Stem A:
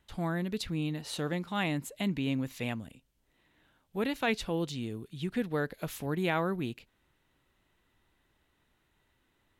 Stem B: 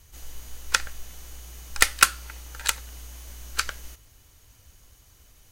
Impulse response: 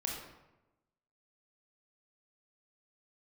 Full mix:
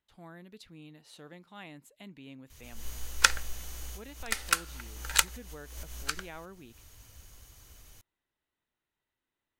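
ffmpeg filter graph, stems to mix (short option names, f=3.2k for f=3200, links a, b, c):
-filter_complex "[0:a]lowshelf=f=210:g=-7,volume=-14.5dB,asplit=2[a][b];[1:a]bandreject=f=84.41:t=h:w=4,bandreject=f=168.82:t=h:w=4,bandreject=f=253.23:t=h:w=4,bandreject=f=337.64:t=h:w=4,bandreject=f=422.05:t=h:w=4,bandreject=f=506.46:t=h:w=4,bandreject=f=590.87:t=h:w=4,bandreject=f=675.28:t=h:w=4,bandreject=f=759.69:t=h:w=4,bandreject=f=844.1:t=h:w=4,bandreject=f=928.51:t=h:w=4,adelay=2500,volume=1dB[c];[b]apad=whole_len=353321[d];[c][d]sidechaincompress=threshold=-55dB:ratio=8:attack=16:release=160[e];[a][e]amix=inputs=2:normalize=0"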